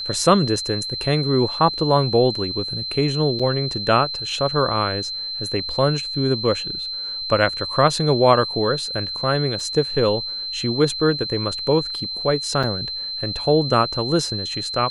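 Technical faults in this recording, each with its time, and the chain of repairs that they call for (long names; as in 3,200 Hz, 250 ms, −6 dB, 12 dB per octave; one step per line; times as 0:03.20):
whistle 4,100 Hz −26 dBFS
0:03.39–0:03.40: drop-out 5.5 ms
0:09.60: drop-out 2.9 ms
0:12.63: drop-out 4.8 ms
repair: notch filter 4,100 Hz, Q 30
repair the gap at 0:03.39, 5.5 ms
repair the gap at 0:09.60, 2.9 ms
repair the gap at 0:12.63, 4.8 ms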